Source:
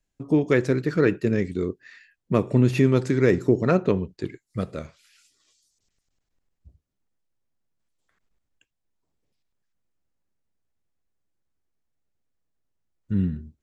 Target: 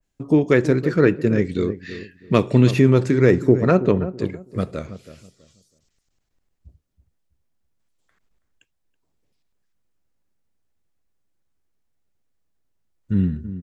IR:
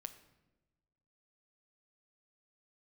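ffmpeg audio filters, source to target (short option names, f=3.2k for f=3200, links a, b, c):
-filter_complex "[0:a]asettb=1/sr,asplit=3[a][b][c];[a]atrim=end=1.494[d];[b]atrim=start=1.49:end=2.71,asetpts=PTS-STARTPTS,afade=t=in:d=0.004:c=qsin,afade=t=out:st=1.216:d=0.004:c=qsin,equalizer=f=3.7k:w=0.8:g=10.5[e];[c]atrim=start=2.706[f];[d][e]acrossfade=d=0.004:c1=hsin:c2=qsin[g];[g][f]acrossfade=d=0.004:c1=qsin:c2=hsin,asplit=2[h][i];[i]adelay=326,lowpass=f=950:p=1,volume=-12.5dB,asplit=2[j][k];[k]adelay=326,lowpass=f=950:p=1,volume=0.27,asplit=2[l][m];[m]adelay=326,lowpass=f=950:p=1,volume=0.27[n];[h][j][l][n]amix=inputs=4:normalize=0,adynamicequalizer=threshold=0.00891:dfrequency=2200:dqfactor=0.7:tfrequency=2200:tqfactor=0.7:attack=5:release=100:ratio=0.375:range=1.5:mode=cutabove:tftype=highshelf,volume=4dB"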